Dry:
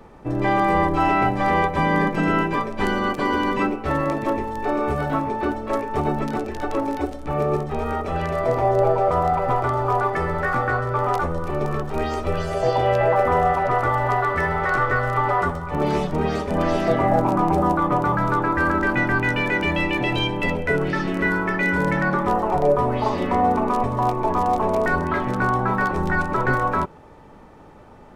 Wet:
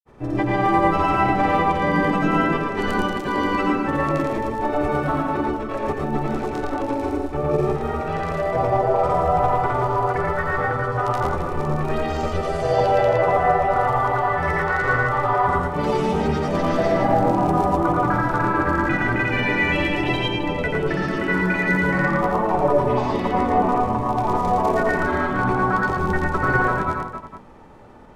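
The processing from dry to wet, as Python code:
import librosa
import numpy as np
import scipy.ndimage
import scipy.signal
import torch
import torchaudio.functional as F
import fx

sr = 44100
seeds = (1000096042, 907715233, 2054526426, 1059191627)

p1 = fx.granulator(x, sr, seeds[0], grain_ms=100.0, per_s=20.0, spray_ms=100.0, spread_st=0)
p2 = p1 + fx.echo_multitap(p1, sr, ms=(86, 113, 266, 453), db=(-6.0, -3.0, -9.5, -13.5), dry=0)
y = p2 * 10.0 ** (-1.0 / 20.0)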